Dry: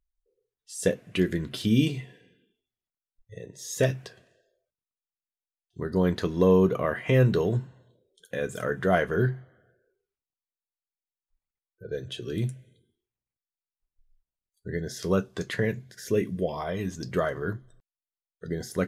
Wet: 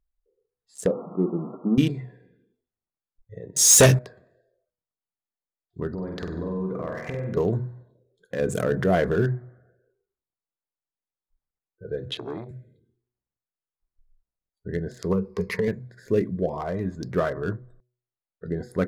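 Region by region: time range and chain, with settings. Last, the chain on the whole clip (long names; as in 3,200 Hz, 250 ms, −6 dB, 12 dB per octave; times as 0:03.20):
0:00.86–0:01.78: converter with a step at zero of −32 dBFS + linear-phase brick-wall band-pass 150–1,400 Hz + low-shelf EQ 420 Hz −3.5 dB
0:03.56–0:03.99: parametric band 8,900 Hz +13.5 dB 1.6 octaves + leveller curve on the samples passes 3
0:05.93–0:07.37: downward compressor 12 to 1, threshold −31 dBFS + linear-phase brick-wall low-pass 9,200 Hz + flutter between parallel walls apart 8.2 metres, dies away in 0.85 s
0:08.39–0:09.14: parametric band 1,400 Hz −6.5 dB 1.5 octaves + envelope flattener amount 50%
0:12.10–0:12.51: downward compressor 8 to 1, threshold −31 dBFS + loudspeaker in its box 110–9,300 Hz, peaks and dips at 290 Hz +6 dB, 460 Hz +6 dB, 2,200 Hz +9 dB, 3,700 Hz +9 dB + saturating transformer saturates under 950 Hz
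0:15.12–0:15.68: EQ curve with evenly spaced ripples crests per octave 0.85, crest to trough 17 dB + downward compressor 12 to 1, threshold −22 dBFS
whole clip: adaptive Wiener filter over 15 samples; hum removal 123 Hz, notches 5; level +3 dB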